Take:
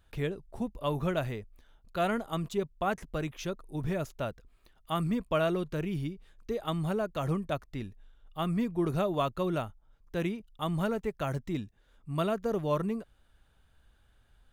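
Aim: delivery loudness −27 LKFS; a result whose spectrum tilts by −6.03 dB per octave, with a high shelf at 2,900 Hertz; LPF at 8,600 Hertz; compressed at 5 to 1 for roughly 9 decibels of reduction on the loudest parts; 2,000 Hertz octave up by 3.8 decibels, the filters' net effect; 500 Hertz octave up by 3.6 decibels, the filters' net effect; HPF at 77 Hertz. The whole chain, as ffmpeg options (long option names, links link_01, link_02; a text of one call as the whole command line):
ffmpeg -i in.wav -af "highpass=77,lowpass=8600,equalizer=frequency=500:width_type=o:gain=4.5,equalizer=frequency=2000:width_type=o:gain=7,highshelf=frequency=2900:gain=-4.5,acompressor=threshold=-32dB:ratio=5,volume=10.5dB" out.wav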